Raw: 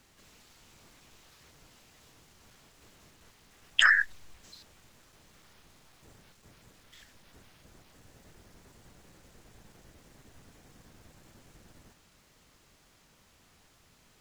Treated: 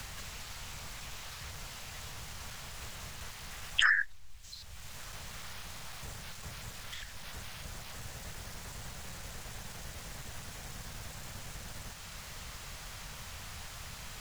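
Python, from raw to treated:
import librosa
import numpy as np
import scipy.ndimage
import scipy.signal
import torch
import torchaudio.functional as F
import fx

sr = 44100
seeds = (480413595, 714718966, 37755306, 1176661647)

y = fx.peak_eq(x, sr, hz=310.0, db=-14.5, octaves=1.2)
y = fx.band_squash(y, sr, depth_pct=100)
y = F.gain(torch.from_numpy(y), 14.0).numpy()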